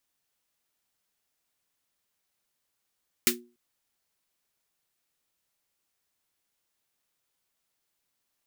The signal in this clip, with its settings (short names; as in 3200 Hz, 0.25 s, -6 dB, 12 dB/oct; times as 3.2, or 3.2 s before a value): snare drum length 0.29 s, tones 240 Hz, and 360 Hz, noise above 1500 Hz, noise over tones 10.5 dB, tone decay 0.36 s, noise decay 0.14 s